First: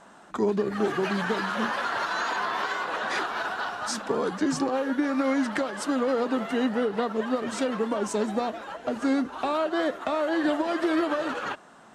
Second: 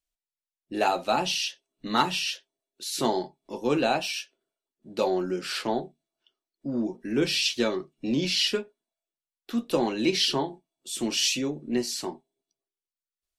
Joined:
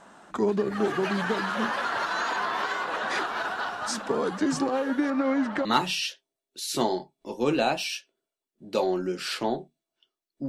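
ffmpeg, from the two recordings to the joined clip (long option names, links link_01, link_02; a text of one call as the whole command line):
ffmpeg -i cue0.wav -i cue1.wav -filter_complex "[0:a]asettb=1/sr,asplit=3[link_01][link_02][link_03];[link_01]atrim=end=5.104[link_04];[link_02]atrim=start=5.1:end=5.65,asetpts=PTS-STARTPTS,afade=type=in:duration=0.004:curve=qsin,afade=type=out:start_time=0.546:duration=0.004:curve=qsin,aemphasis=mode=reproduction:type=75kf[link_05];[link_03]atrim=start=5.646[link_06];[link_04][link_05]acrossfade=duration=0.004:curve1=hsin:curve2=qsin[link_07];[link_07][link_06]acrossfade=duration=0.004:curve1=qsin:curve2=hsin,apad=whole_dur=10.48,atrim=end=10.48,atrim=end=5.652[link_08];[1:a]atrim=start=1.888:end=6.72[link_09];[link_08][link_09]acrossfade=duration=0.004:curve1=hsin:curve2=hsin" out.wav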